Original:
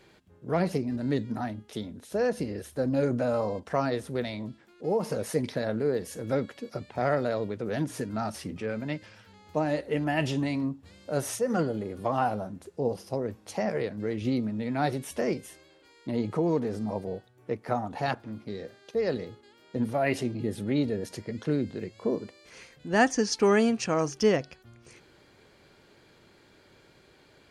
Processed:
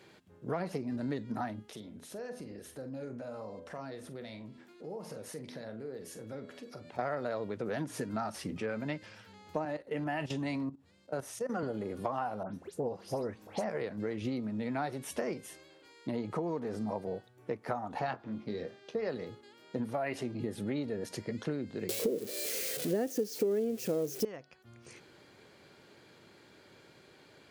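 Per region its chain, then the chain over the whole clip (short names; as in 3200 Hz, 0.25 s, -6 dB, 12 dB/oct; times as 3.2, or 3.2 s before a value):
1.7–6.99 de-hum 83.1 Hz, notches 38 + compressor 2.5:1, threshold -47 dBFS + doubler 45 ms -12 dB
9.65–11.63 level quantiser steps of 15 dB + three-band expander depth 40%
12.43–13.64 dispersion highs, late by 0.113 s, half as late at 2600 Hz + upward compressor, threshold -46 dBFS
17.99–19.09 air absorption 67 m + doubler 23 ms -9 dB
21.89–24.25 switching spikes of -16 dBFS + resonant low shelf 680 Hz +13 dB, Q 3
whole clip: HPF 100 Hz; dynamic EQ 1100 Hz, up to +6 dB, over -40 dBFS, Q 0.7; compressor 6:1, threshold -32 dBFS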